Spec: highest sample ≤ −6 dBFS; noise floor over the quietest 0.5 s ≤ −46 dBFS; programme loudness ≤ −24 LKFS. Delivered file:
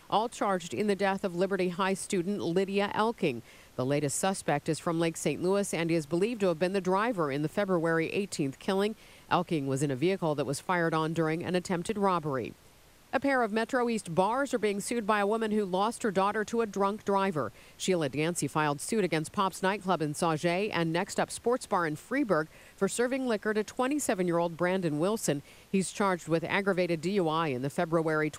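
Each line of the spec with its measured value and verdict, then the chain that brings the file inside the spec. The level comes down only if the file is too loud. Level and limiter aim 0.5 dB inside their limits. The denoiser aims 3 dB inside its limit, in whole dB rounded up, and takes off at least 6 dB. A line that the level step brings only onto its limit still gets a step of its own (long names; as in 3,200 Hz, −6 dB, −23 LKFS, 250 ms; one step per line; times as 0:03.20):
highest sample −11.5 dBFS: in spec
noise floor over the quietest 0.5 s −58 dBFS: in spec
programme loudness −30.0 LKFS: in spec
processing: no processing needed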